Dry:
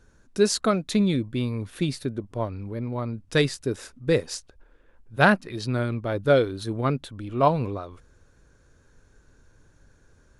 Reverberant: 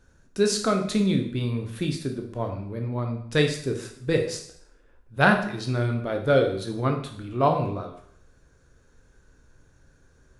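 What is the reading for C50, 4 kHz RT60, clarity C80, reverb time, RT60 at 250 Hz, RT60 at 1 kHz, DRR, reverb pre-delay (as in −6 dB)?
7.5 dB, 0.60 s, 11.5 dB, 0.65 s, 0.65 s, 0.65 s, 3.0 dB, 7 ms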